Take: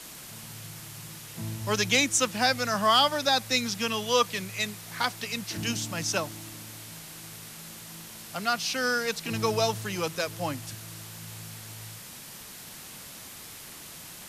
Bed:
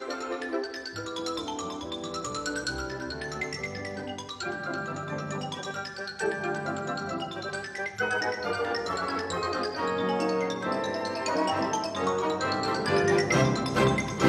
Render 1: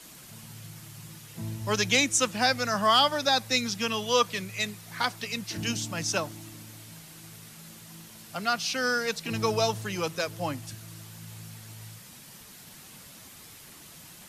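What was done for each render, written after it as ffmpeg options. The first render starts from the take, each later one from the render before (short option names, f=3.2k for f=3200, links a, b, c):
-af "afftdn=nr=6:nf=-45"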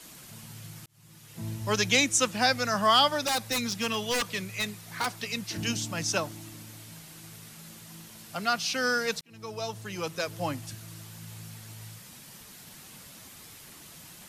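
-filter_complex "[0:a]asettb=1/sr,asplit=3[a][b][c];[a]atrim=end=3.244[d];[b]atrim=start=3.24:end=5.2,asetpts=PTS-STARTPTS,afade=t=in:d=0.004:c=qsin,afade=t=out:st=1.956:d=0.004:c=qsin,aeval=exprs='0.0794*(abs(mod(val(0)/0.0794+3,4)-2)-1)':c=same[e];[c]atrim=start=5.196[f];[d][e]acrossfade=d=0.004:c1=hsin:c2=qsin[g];[g][f]acrossfade=d=0.004:c1=qsin:c2=hsin,asplit=3[h][i][j];[h]atrim=end=0.86,asetpts=PTS-STARTPTS,afade=t=out:st=0.856:d=0.004:c=hsin[k];[i]atrim=start=0.86:end=9.21,asetpts=PTS-STARTPTS,afade=t=in:d=0.64,afade=t=out:st=8.346:d=0.004:c=hsin[l];[j]atrim=start=9.21,asetpts=PTS-STARTPTS,afade=t=in:d=1.2[m];[k][l][m]concat=n=3:v=0:a=1"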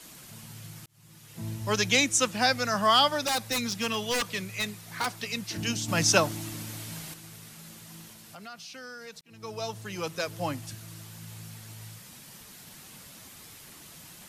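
-filter_complex "[0:a]asettb=1/sr,asplit=3[a][b][c];[a]atrim=end=5.884[d];[b]atrim=start=5.88:end=7.14,asetpts=PTS-STARTPTS,afade=t=in:d=0.004:c=qsin,afade=t=out:st=1.256:d=0.004:c=qsin,acontrast=80[e];[c]atrim=start=7.136[f];[d][e]acrossfade=d=0.004:c1=hsin:c2=qsin[g];[g][f]acrossfade=d=0.004:c1=qsin:c2=hsin,asettb=1/sr,asplit=3[h][i][j];[h]atrim=end=8.124[k];[i]atrim=start=8.12:end=9.43,asetpts=PTS-STARTPTS,afade=t=in:d=0.004:c=qsin,afade=t=out:st=1.306:d=0.004:c=qsin,acompressor=threshold=-46dB:ratio=3:attack=3.2:release=140:knee=1:detection=peak[l];[j]atrim=start=9.426[m];[k][l]acrossfade=d=0.004:c1=hsin:c2=qsin[n];[n][m]acrossfade=d=0.004:c1=qsin:c2=hsin"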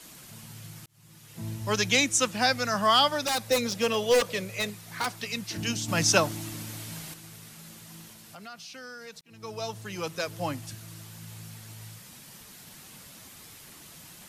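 -filter_complex "[0:a]asettb=1/sr,asplit=3[a][b][c];[a]atrim=end=3.484[d];[b]atrim=start=3.48:end=4.7,asetpts=PTS-STARTPTS,afade=t=in:d=0.004:c=qsin,afade=t=out:st=1.216:d=0.004:c=qsin,equalizer=f=530:t=o:w=0.58:g=13.5[e];[c]atrim=start=4.696[f];[d][e]acrossfade=d=0.004:c1=hsin:c2=qsin[g];[g][f]acrossfade=d=0.004:c1=qsin:c2=hsin"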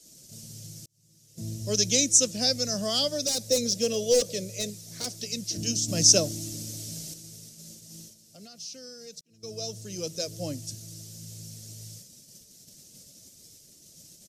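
-af "agate=range=-9dB:threshold=-47dB:ratio=16:detection=peak,firequalizer=gain_entry='entry(600,0);entry(870,-21);entry(5600,9);entry(11000,-1)':delay=0.05:min_phase=1"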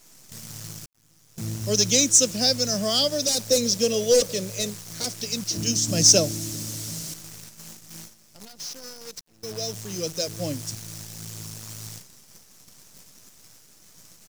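-filter_complex "[0:a]asplit=2[a][b];[b]asoftclip=type=hard:threshold=-18dB,volume=-4dB[c];[a][c]amix=inputs=2:normalize=0,acrusher=bits=7:dc=4:mix=0:aa=0.000001"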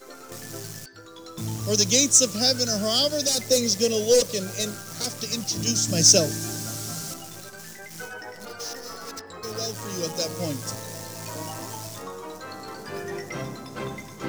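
-filter_complex "[1:a]volume=-10dB[a];[0:a][a]amix=inputs=2:normalize=0"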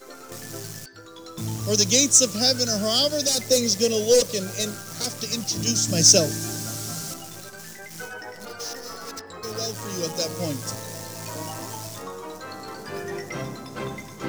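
-af "volume=1dB"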